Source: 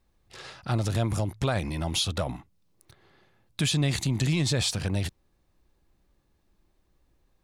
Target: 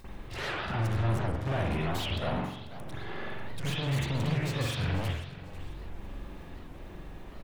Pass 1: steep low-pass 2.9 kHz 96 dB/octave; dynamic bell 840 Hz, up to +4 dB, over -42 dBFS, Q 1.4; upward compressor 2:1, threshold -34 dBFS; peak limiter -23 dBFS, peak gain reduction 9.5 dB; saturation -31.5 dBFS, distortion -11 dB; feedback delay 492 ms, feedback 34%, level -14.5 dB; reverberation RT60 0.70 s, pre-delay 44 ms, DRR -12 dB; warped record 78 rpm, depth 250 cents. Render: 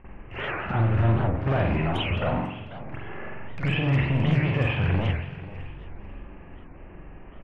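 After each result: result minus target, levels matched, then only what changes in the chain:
4 kHz band -6.5 dB; saturation: distortion -6 dB
remove: steep low-pass 2.9 kHz 96 dB/octave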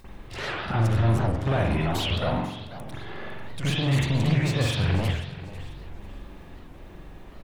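saturation: distortion -6 dB
change: saturation -40.5 dBFS, distortion -5 dB

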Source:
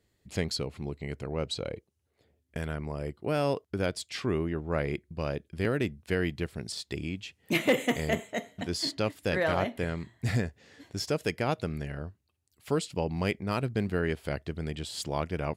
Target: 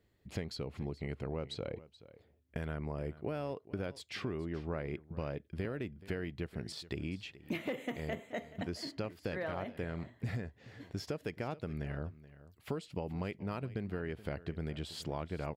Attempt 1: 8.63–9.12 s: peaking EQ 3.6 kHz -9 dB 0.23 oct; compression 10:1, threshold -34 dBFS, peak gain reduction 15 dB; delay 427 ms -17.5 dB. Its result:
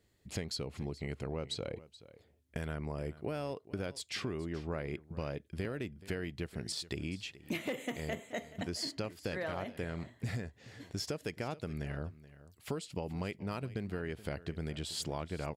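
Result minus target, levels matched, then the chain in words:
8 kHz band +9.0 dB
8.63–9.12 s: peaking EQ 3.6 kHz -9 dB 0.23 oct; compression 10:1, threshold -34 dBFS, peak gain reduction 15 dB; peaking EQ 8.2 kHz -10.5 dB 1.8 oct; delay 427 ms -17.5 dB

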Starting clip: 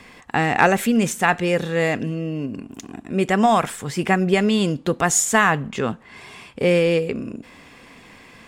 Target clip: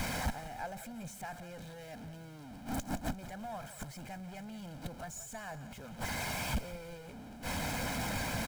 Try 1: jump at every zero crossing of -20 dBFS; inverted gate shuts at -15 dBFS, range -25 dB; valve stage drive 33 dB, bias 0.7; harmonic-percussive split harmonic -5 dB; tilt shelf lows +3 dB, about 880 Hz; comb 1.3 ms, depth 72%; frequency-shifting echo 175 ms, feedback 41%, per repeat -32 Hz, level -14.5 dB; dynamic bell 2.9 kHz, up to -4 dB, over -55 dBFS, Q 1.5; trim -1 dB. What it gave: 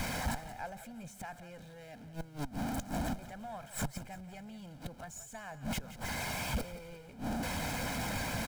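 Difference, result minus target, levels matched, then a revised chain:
jump at every zero crossing: distortion -4 dB
jump at every zero crossing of -13.5 dBFS; inverted gate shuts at -15 dBFS, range -25 dB; valve stage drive 33 dB, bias 0.7; harmonic-percussive split harmonic -5 dB; tilt shelf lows +3 dB, about 880 Hz; comb 1.3 ms, depth 72%; frequency-shifting echo 175 ms, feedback 41%, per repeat -32 Hz, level -14.5 dB; dynamic bell 2.9 kHz, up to -4 dB, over -55 dBFS, Q 1.5; trim -1 dB

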